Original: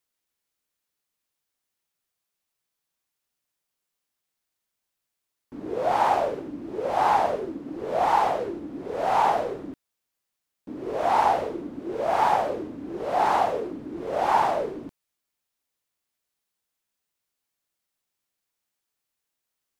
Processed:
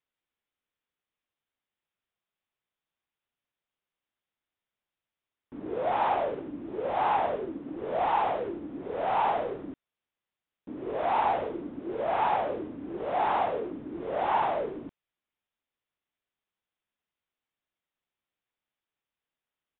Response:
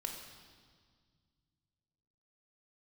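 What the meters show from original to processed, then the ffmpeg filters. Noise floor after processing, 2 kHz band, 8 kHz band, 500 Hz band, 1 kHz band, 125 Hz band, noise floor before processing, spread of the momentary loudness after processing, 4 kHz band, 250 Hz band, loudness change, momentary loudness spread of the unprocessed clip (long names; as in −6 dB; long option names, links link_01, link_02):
below −85 dBFS, −4.0 dB, can't be measured, −4.0 dB, −5.0 dB, −4.0 dB, −83 dBFS, 12 LU, −5.5 dB, −3.0 dB, −4.5 dB, 13 LU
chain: -filter_complex "[0:a]asplit=2[link_01][link_02];[link_02]volume=24.5dB,asoftclip=hard,volume=-24.5dB,volume=-3dB[link_03];[link_01][link_03]amix=inputs=2:normalize=0,aresample=8000,aresample=44100,volume=-7.5dB"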